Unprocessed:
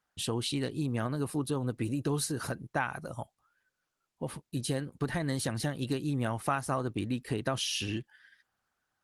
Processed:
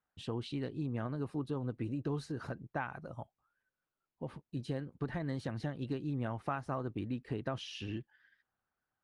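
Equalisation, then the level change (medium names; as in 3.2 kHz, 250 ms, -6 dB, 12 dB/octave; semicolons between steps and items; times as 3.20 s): tape spacing loss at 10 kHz 21 dB; treble shelf 9.3 kHz -5 dB; -4.5 dB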